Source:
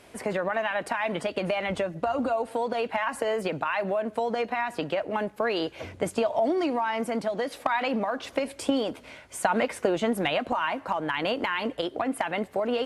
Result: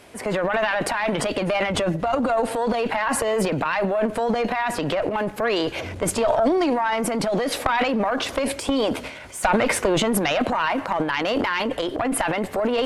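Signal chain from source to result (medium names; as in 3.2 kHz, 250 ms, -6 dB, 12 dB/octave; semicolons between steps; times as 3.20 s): Chebyshev shaper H 2 -6 dB, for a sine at -9 dBFS; transient shaper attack -2 dB, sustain +11 dB; trim +4.5 dB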